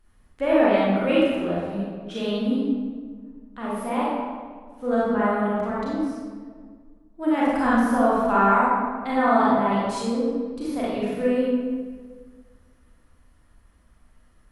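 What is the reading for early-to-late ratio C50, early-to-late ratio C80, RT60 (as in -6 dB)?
-4.0 dB, -0.5 dB, 1.7 s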